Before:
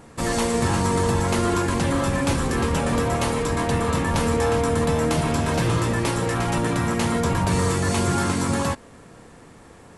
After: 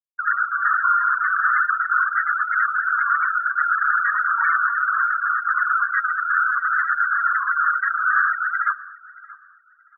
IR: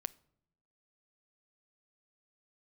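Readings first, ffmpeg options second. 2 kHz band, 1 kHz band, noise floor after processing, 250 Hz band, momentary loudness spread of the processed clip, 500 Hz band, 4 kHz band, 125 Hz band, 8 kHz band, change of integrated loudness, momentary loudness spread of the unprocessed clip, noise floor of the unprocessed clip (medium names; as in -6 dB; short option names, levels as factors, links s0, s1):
+12.5 dB, +6.5 dB, -53 dBFS, under -40 dB, 3 LU, under -40 dB, under -40 dB, under -40 dB, under -40 dB, +3.0 dB, 2 LU, -47 dBFS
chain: -filter_complex "[0:a]aeval=exprs='abs(val(0))':c=same,highpass=f=1400:t=q:w=4.7,aeval=exprs='0.168*(abs(mod(val(0)/0.168+3,4)-2)-1)':c=same,afftfilt=real='re*gte(hypot(re,im),0.2)':imag='im*gte(hypot(re,im),0.2)':win_size=1024:overlap=0.75,asplit=2[s0][s1];[s1]adelay=628,lowpass=f=2000:p=1,volume=0.119,asplit=2[s2][s3];[s3]adelay=628,lowpass=f=2000:p=1,volume=0.3,asplit=2[s4][s5];[s5]adelay=628,lowpass=f=2000:p=1,volume=0.3[s6];[s0][s2][s4][s6]amix=inputs=4:normalize=0,volume=2"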